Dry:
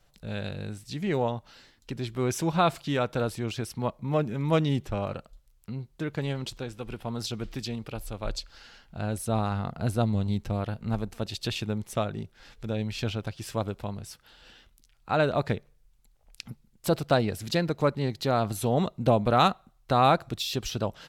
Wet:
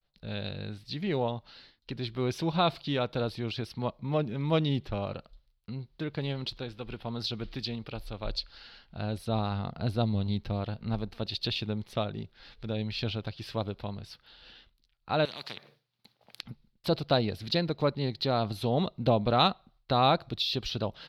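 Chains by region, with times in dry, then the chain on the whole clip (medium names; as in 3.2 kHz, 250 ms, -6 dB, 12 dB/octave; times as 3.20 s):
15.25–16.41 s: high-pass 130 Hz 24 dB/octave + spectrum-flattening compressor 4:1
whole clip: dynamic bell 1.6 kHz, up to -4 dB, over -43 dBFS, Q 1.4; expander -54 dBFS; resonant high shelf 5.6 kHz -10 dB, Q 3; trim -2.5 dB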